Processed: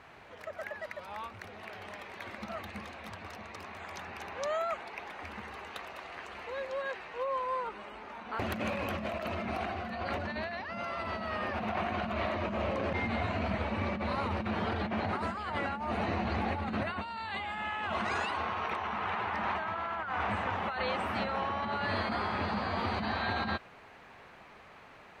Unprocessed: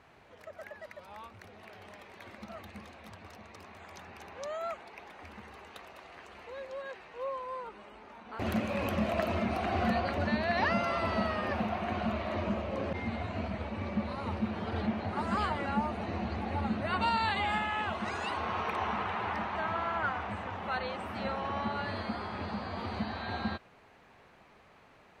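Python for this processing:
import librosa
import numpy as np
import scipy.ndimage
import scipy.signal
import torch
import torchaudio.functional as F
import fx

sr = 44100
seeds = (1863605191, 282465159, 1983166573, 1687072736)

y = fx.peak_eq(x, sr, hz=1700.0, db=4.5, octaves=2.7)
y = fx.over_compress(y, sr, threshold_db=-34.0, ratio=-1.0)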